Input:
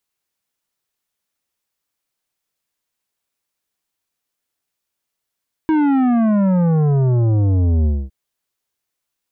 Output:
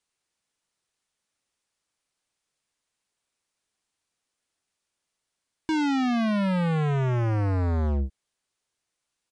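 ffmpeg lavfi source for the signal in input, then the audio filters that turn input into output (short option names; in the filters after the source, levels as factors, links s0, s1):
-f lavfi -i "aevalsrc='0.211*clip((2.41-t)/0.24,0,1)*tanh(3.55*sin(2*PI*320*2.41/log(65/320)*(exp(log(65/320)*t/2.41)-1)))/tanh(3.55)':d=2.41:s=44100"
-af "volume=15,asoftclip=hard,volume=0.0668,aresample=22050,aresample=44100"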